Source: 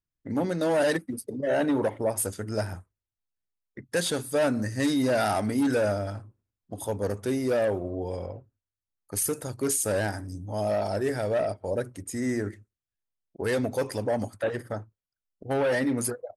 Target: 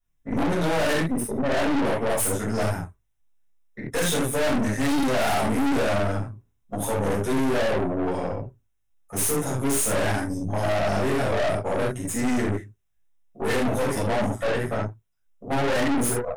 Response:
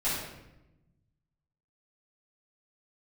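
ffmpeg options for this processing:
-filter_complex "[0:a]asuperstop=centerf=4500:order=4:qfactor=3.4[link_01];[1:a]atrim=start_sample=2205,atrim=end_sample=4410[link_02];[link_01][link_02]afir=irnorm=-1:irlink=0,aeval=exprs='(tanh(22.4*val(0)+0.65)-tanh(0.65))/22.4':channel_layout=same,volume=5.5dB"

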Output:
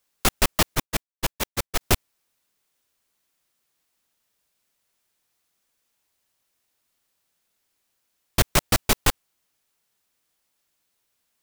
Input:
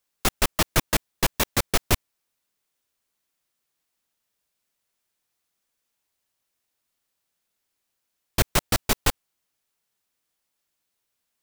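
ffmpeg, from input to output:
ffmpeg -i in.wav -filter_complex "[0:a]aeval=exprs='0.562*(cos(1*acos(clip(val(0)/0.562,-1,1)))-cos(1*PI/2))+0.141*(cos(5*acos(clip(val(0)/0.562,-1,1)))-cos(5*PI/2))':channel_layout=same,asettb=1/sr,asplit=3[link_01][link_02][link_03];[link_01]atrim=end=0.754[link_04];[link_02]atrim=start=0.75:end=1.81,asetpts=PTS-STARTPTS,afade=type=in:duration=0.004:curve=qsin,afade=type=out:start_time=1.056:duration=0.004:curve=qsin,agate=range=-33dB:threshold=-10dB:ratio=3:detection=peak[link_05];[link_03]atrim=start=1.806[link_06];[link_04][link_05]acrossfade=duration=0.004:curve1=hsin:curve2=qsin[link_07];[link_07][link_06]acrossfade=duration=0.004:curve1=qsin:curve2=hsin,volume=-2.5dB" out.wav

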